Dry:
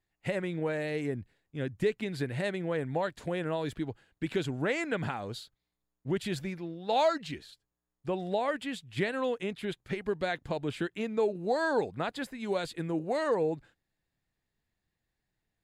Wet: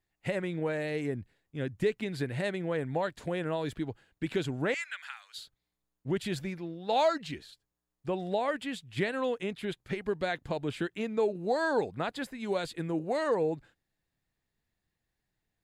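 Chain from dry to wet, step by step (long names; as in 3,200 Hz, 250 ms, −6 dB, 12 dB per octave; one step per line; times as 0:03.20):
0:04.74–0:05.38: high-pass filter 1,500 Hz 24 dB per octave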